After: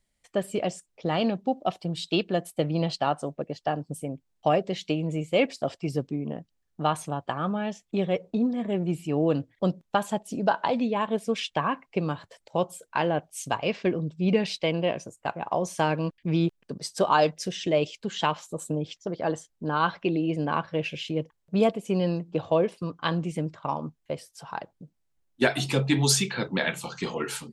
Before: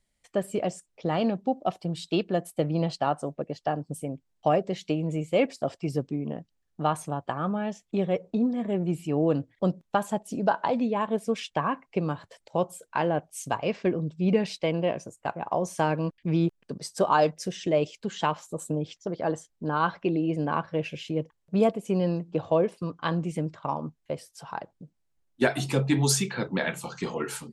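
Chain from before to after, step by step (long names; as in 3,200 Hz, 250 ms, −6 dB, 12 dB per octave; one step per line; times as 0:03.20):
dynamic equaliser 3,400 Hz, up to +6 dB, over −48 dBFS, Q 0.91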